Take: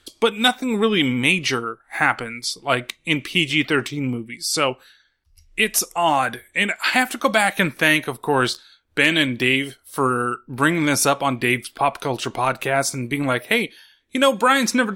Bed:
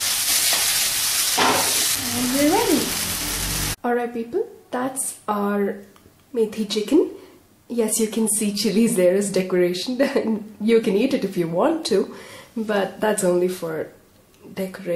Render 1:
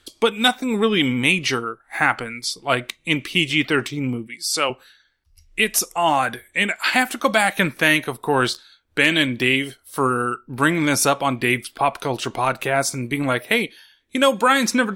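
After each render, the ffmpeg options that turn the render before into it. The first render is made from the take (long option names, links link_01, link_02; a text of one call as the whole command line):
ffmpeg -i in.wav -filter_complex "[0:a]asettb=1/sr,asplit=3[link_01][link_02][link_03];[link_01]atrim=end=4.274[link_04];[link_02]atrim=start=4.27:end=4.7,asetpts=PTS-STARTPTS,afade=type=in:duration=0.004:curve=qsin,afade=type=out:start_time=0.426:duration=0.004:curve=qsin,highpass=frequency=440:poles=1[link_05];[link_03]atrim=start=4.696[link_06];[link_04][link_05]acrossfade=duration=0.004:curve1=hsin:curve2=qsin[link_07];[link_07][link_06]acrossfade=duration=0.004:curve1=qsin:curve2=hsin" out.wav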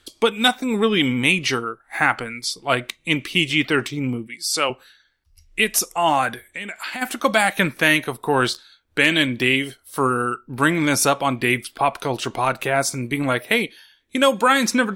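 ffmpeg -i in.wav -filter_complex "[0:a]asplit=3[link_01][link_02][link_03];[link_01]afade=type=out:start_time=6.33:duration=0.02[link_04];[link_02]acompressor=threshold=-28dB:ratio=4:attack=3.2:release=140:knee=1:detection=peak,afade=type=in:start_time=6.33:duration=0.02,afade=type=out:start_time=7.01:duration=0.02[link_05];[link_03]afade=type=in:start_time=7.01:duration=0.02[link_06];[link_04][link_05][link_06]amix=inputs=3:normalize=0" out.wav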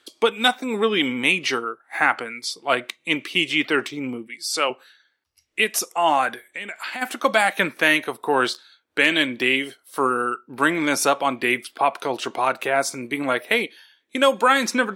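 ffmpeg -i in.wav -af "highpass=290,highshelf=frequency=4900:gain=-5.5" out.wav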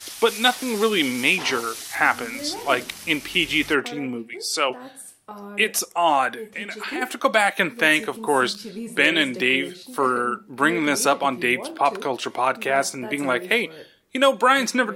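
ffmpeg -i in.wav -i bed.wav -filter_complex "[1:a]volume=-15.5dB[link_01];[0:a][link_01]amix=inputs=2:normalize=0" out.wav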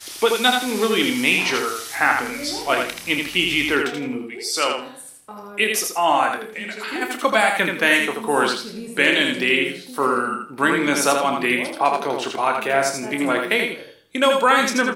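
ffmpeg -i in.wav -filter_complex "[0:a]asplit=2[link_01][link_02];[link_02]adelay=28,volume=-9dB[link_03];[link_01][link_03]amix=inputs=2:normalize=0,asplit=2[link_04][link_05];[link_05]aecho=0:1:81|162|243|324:0.596|0.155|0.0403|0.0105[link_06];[link_04][link_06]amix=inputs=2:normalize=0" out.wav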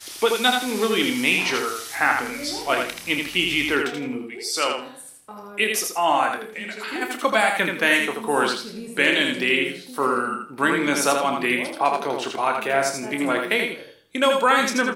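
ffmpeg -i in.wav -af "volume=-2dB" out.wav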